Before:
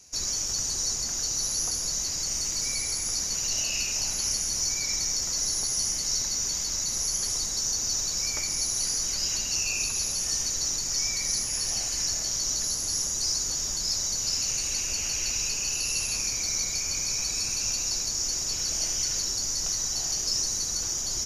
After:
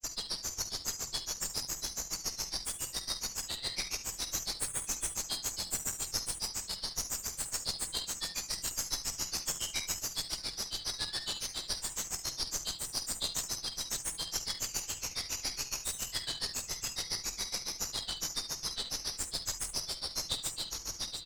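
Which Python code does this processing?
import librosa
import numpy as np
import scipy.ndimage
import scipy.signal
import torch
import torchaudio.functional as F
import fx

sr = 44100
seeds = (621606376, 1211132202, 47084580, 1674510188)

y = fx.granulator(x, sr, seeds[0], grain_ms=100.0, per_s=7.2, spray_ms=100.0, spread_st=7)
y = fx.echo_multitap(y, sr, ms=(48, 49, 71, 77, 145, 706), db=(-11.0, -13.0, -12.0, -15.5, -10.5, -10.5))
y = fx.cheby_harmonics(y, sr, harmonics=(2, 6), levels_db=(-8, -21), full_scale_db=-14.0)
y = y * 10.0 ** (-5.0 / 20.0)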